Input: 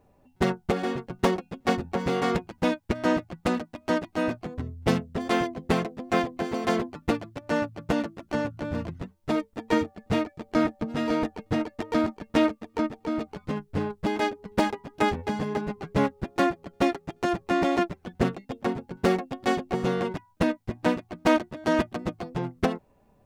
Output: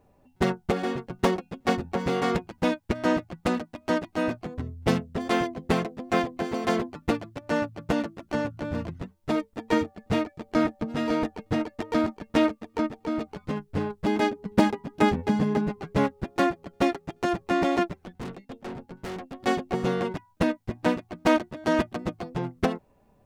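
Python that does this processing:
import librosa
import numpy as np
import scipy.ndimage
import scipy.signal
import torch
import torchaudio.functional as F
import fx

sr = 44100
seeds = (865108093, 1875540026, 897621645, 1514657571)

y = fx.peak_eq(x, sr, hz=200.0, db=7.5, octaves=1.4, at=(14.07, 15.69))
y = fx.tube_stage(y, sr, drive_db=33.0, bias=0.55, at=(18.05, 19.4))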